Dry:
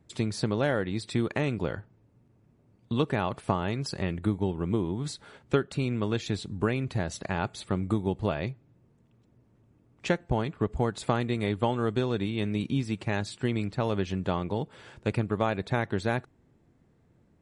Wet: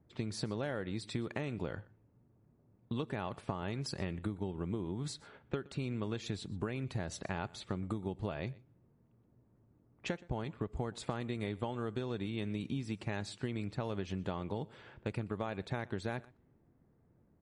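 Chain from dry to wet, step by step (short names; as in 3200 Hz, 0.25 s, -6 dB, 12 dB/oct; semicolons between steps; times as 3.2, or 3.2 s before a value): compressor, threshold -28 dBFS, peak gain reduction 10 dB; low-pass opened by the level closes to 1400 Hz, open at -31 dBFS; on a send: echo 0.122 s -22 dB; on the sum: gain -5 dB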